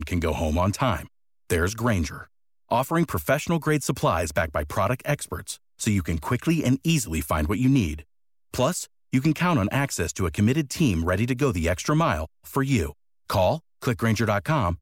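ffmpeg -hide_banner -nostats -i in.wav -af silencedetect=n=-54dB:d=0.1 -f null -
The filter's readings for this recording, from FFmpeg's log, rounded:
silence_start: 1.08
silence_end: 1.50 | silence_duration: 0.42
silence_start: 2.27
silence_end: 2.69 | silence_duration: 0.42
silence_start: 5.57
silence_end: 5.79 | silence_duration: 0.22
silence_start: 8.04
silence_end: 8.52 | silence_duration: 0.48
silence_start: 8.87
silence_end: 9.12 | silence_duration: 0.25
silence_start: 12.27
silence_end: 12.44 | silence_duration: 0.17
silence_start: 12.94
silence_end: 13.29 | silence_duration: 0.35
silence_start: 13.60
silence_end: 13.81 | silence_duration: 0.21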